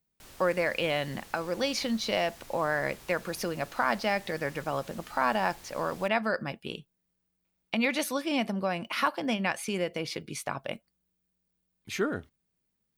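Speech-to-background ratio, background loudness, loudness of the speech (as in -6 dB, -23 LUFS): 19.5 dB, -50.0 LUFS, -30.5 LUFS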